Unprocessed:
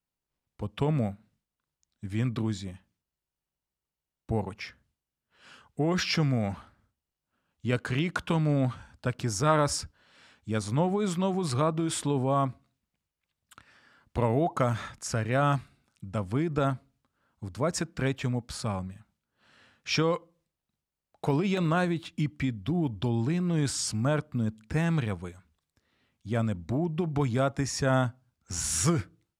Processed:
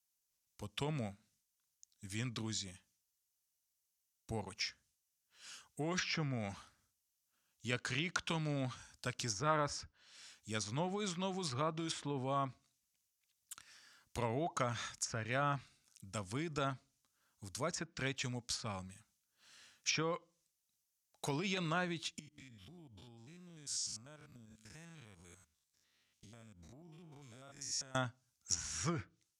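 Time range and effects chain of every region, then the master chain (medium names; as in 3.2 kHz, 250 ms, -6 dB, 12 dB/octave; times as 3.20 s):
22.19–27.95 s: spectrogram pixelated in time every 100 ms + treble shelf 7.5 kHz -6 dB + compression 8:1, threshold -42 dBFS
whole clip: pre-emphasis filter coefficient 0.9; low-pass that closes with the level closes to 1.9 kHz, closed at -36.5 dBFS; peaking EQ 6.1 kHz +7 dB 0.49 oct; trim +6.5 dB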